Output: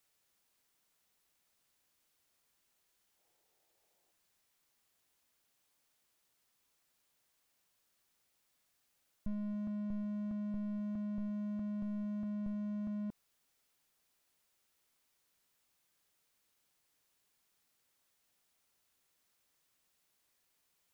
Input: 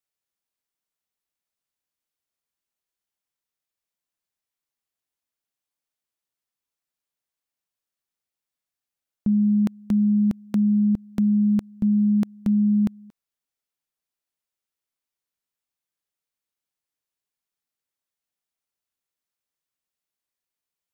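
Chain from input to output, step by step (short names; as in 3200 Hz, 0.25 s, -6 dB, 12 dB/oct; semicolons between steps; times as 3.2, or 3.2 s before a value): spectral gain 3.19–4.12, 320–910 Hz +9 dB; slew limiter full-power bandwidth 0.76 Hz; gain +11 dB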